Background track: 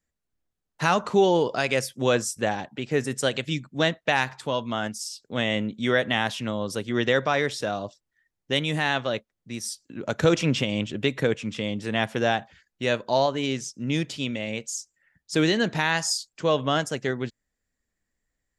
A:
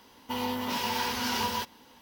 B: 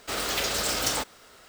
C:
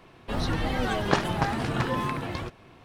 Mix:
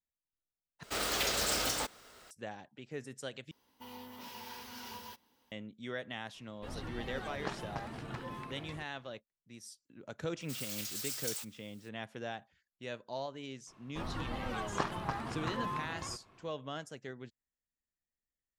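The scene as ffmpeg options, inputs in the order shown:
-filter_complex "[2:a]asplit=2[a][b];[3:a]asplit=2[c][d];[0:a]volume=-18dB[e];[a]alimiter=limit=-15.5dB:level=0:latency=1:release=218[f];[1:a]highshelf=f=12k:g=8[g];[b]aderivative[h];[d]equalizer=f=1.1k:w=2.5:g=7[i];[e]asplit=3[j][k][l];[j]atrim=end=0.834[m];[f]atrim=end=1.48,asetpts=PTS-STARTPTS,volume=-4.5dB[n];[k]atrim=start=2.306:end=3.514[o];[g]atrim=end=2.01,asetpts=PTS-STARTPTS,volume=-17.5dB[p];[l]atrim=start=5.516[q];[c]atrim=end=2.84,asetpts=PTS-STARTPTS,volume=-15.5dB,afade=t=in:d=0.004:c=hsin,afade=t=out:st=2.836:d=0.004:c=hsin,adelay=279594S[r];[h]atrim=end=1.48,asetpts=PTS-STARTPTS,volume=-10dB,afade=t=in:d=0.004:c=hsin,afade=t=out:st=1.476:d=0.004:c=hsin,adelay=10410[s];[i]atrim=end=2.84,asetpts=PTS-STARTPTS,volume=-12.5dB,afade=t=in:d=0.004:c=hsin,afade=t=out:st=2.836:d=0.004:c=hsin,adelay=13670[t];[m][n]acrossfade=d=0.004:c1=hsin:c2=hsin[u];[u][o]acrossfade=d=0.004:c1=hsin:c2=hsin[v];[v][p]acrossfade=d=0.004:c1=hsin:c2=hsin[w];[w][q]acrossfade=d=0.004:c1=hsin:c2=hsin[x];[x][r][s][t]amix=inputs=4:normalize=0"

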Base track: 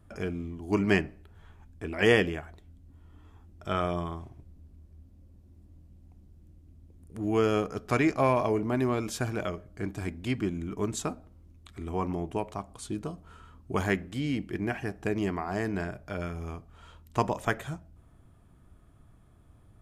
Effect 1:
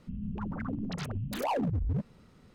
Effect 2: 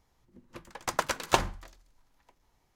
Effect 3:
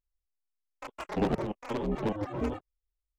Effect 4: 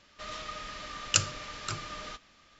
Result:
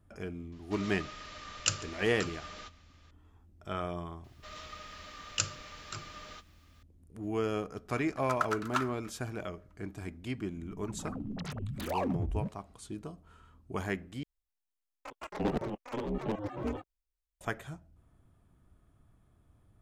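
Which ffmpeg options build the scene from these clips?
-filter_complex "[4:a]asplit=2[a][b];[0:a]volume=-7dB[c];[a]aecho=1:1:143:0.0794[d];[b]acrusher=bits=10:mix=0:aa=0.000001[e];[2:a]highpass=f=1.3k:t=q:w=9.7[f];[1:a]dynaudnorm=f=130:g=9:m=12dB[g];[c]asplit=2[h][i];[h]atrim=end=14.234[j];[3:a]atrim=end=3.18,asetpts=PTS-STARTPTS,volume=-3.5dB[k];[i]atrim=start=17.406[l];[d]atrim=end=2.59,asetpts=PTS-STARTPTS,volume=-5dB,afade=t=in:d=0.004:c=hsin,afade=t=out:st=2.586:d=0.004:c=hsin,adelay=520[m];[e]atrim=end=2.59,asetpts=PTS-STARTPTS,volume=-6.5dB,afade=t=in:d=0.004:c=hsin,afade=t=out:st=2.586:d=0.004:c=hsin,adelay=4240[n];[f]atrim=end=2.75,asetpts=PTS-STARTPTS,volume=-13dB,afade=t=in:d=0.004:c=hsin,afade=t=out:st=2.746:d=0.004:c=hsin,adelay=7420[o];[g]atrim=end=2.54,asetpts=PTS-STARTPTS,volume=-15dB,afade=t=in:d=0.004:c=hsin,afade=t=out:st=2.536:d=0.004:c=hsin,adelay=10470[p];[j][k]acrossfade=d=0.004:c1=hsin:c2=hsin[q];[q][l]acrossfade=d=0.004:c1=hsin:c2=hsin[r];[r][m][n][o][p]amix=inputs=5:normalize=0"

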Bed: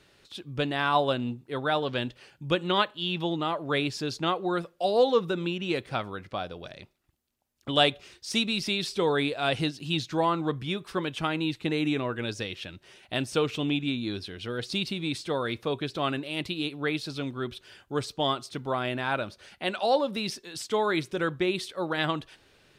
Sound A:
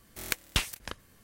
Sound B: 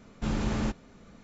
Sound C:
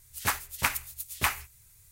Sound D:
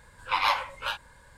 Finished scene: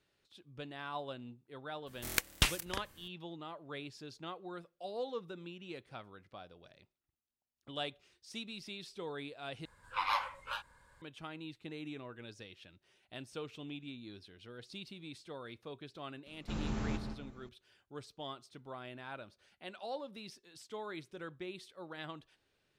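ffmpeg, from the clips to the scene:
-filter_complex "[0:a]volume=-17.5dB[a];[4:a]equalizer=f=1.2k:t=o:w=0.72:g=4.5[b];[2:a]asplit=2[c][d];[d]adelay=167,lowpass=f=2k:p=1,volume=-5.5dB,asplit=2[e][f];[f]adelay=167,lowpass=f=2k:p=1,volume=0.37,asplit=2[g][h];[h]adelay=167,lowpass=f=2k:p=1,volume=0.37,asplit=2[i][j];[j]adelay=167,lowpass=f=2k:p=1,volume=0.37[k];[c][e][g][i][k]amix=inputs=5:normalize=0[l];[a]asplit=2[m][n];[m]atrim=end=9.654[o];[b]atrim=end=1.37,asetpts=PTS-STARTPTS,volume=-11dB[p];[n]atrim=start=11.016[q];[1:a]atrim=end=1.23,asetpts=PTS-STARTPTS,volume=-1dB,afade=t=in:d=0.02,afade=t=out:st=1.21:d=0.02,adelay=1860[r];[l]atrim=end=1.23,asetpts=PTS-STARTPTS,volume=-9dB,afade=t=in:d=0.004:c=hsin,afade=t=out:st=1.226:d=0.004:c=hsin,adelay=16260[s];[o][p]acrossfade=d=0.004:c1=hsin:c2=hsin[t];[t][q]acrossfade=d=0.004:c1=hsin:c2=hsin[u];[u][r][s]amix=inputs=3:normalize=0"

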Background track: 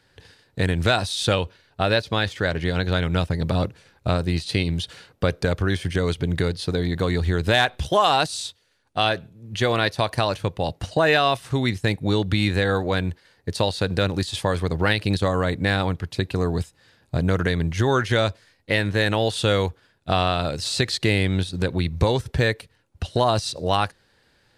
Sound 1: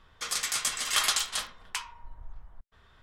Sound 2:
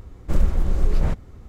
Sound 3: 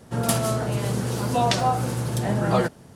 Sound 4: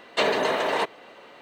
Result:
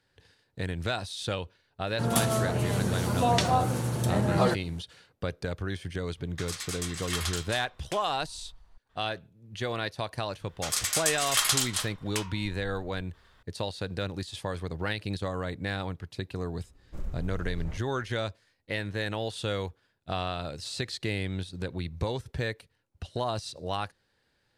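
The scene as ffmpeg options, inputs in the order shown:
-filter_complex "[1:a]asplit=2[a][b];[0:a]volume=-11dB[c];[3:a]bandreject=f=5k:w=17[d];[b]highshelf=f=7k:g=7.5[e];[d]atrim=end=2.95,asetpts=PTS-STARTPTS,volume=-3dB,afade=t=in:d=0.004:c=hsin,afade=t=out:st=2.946:d=0.004:c=hsin,adelay=1870[f];[a]atrim=end=3.02,asetpts=PTS-STARTPTS,volume=-7.5dB,afade=t=in:d=0.004:c=hsin,afade=t=out:st=3.016:d=0.004:c=hsin,adelay=6170[g];[e]atrim=end=3.02,asetpts=PTS-STARTPTS,volume=-1.5dB,afade=t=in:d=0.004:c=hsin,afade=t=out:st=3.016:d=0.004:c=hsin,adelay=10410[h];[2:a]atrim=end=1.48,asetpts=PTS-STARTPTS,volume=-17.5dB,afade=t=in:d=0.004:c=hsin,afade=t=out:st=1.476:d=0.004:c=hsin,adelay=16640[i];[c][f][g][h][i]amix=inputs=5:normalize=0"

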